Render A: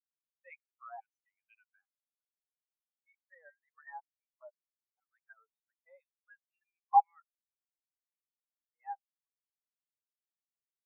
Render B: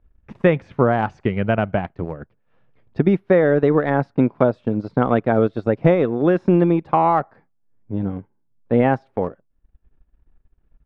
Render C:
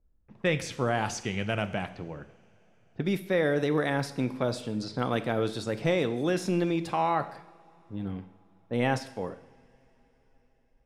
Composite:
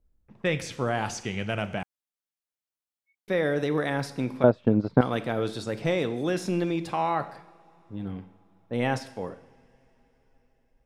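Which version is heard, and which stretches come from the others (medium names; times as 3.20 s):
C
1.83–3.28 s: from A
4.44–5.01 s: from B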